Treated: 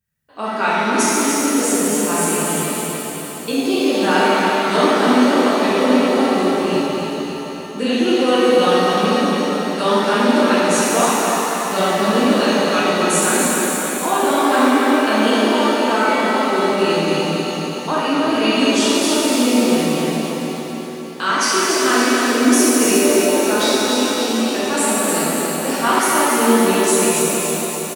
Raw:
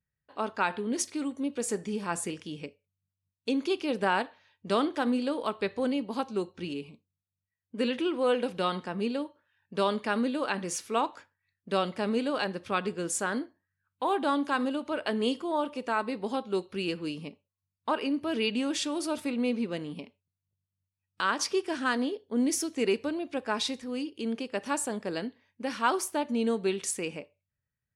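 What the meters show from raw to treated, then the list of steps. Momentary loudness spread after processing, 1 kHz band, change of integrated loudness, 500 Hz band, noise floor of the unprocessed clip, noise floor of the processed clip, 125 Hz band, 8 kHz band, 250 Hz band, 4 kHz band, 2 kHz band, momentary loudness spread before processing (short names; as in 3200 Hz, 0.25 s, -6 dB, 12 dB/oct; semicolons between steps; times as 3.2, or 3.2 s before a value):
8 LU, +15.0 dB, +14.5 dB, +14.5 dB, under -85 dBFS, -27 dBFS, +15.0 dB, +18.5 dB, +14.5 dB, +16.0 dB, +15.0 dB, 9 LU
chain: high shelf 7800 Hz +8 dB; on a send: feedback echo 0.284 s, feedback 59%, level -5 dB; on the sum: shimmer reverb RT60 2.8 s, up +7 st, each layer -8 dB, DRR -8.5 dB; gain +3 dB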